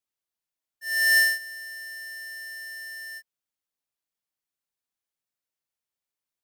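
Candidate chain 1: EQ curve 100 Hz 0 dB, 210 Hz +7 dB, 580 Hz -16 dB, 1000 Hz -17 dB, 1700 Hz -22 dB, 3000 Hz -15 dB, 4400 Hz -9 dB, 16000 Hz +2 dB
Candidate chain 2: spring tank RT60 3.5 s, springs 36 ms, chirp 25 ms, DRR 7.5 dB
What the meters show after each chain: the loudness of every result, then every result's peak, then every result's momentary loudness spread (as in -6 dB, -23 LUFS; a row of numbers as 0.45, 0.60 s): -29.5, -24.5 LUFS; -16.0, -16.0 dBFS; 19, 19 LU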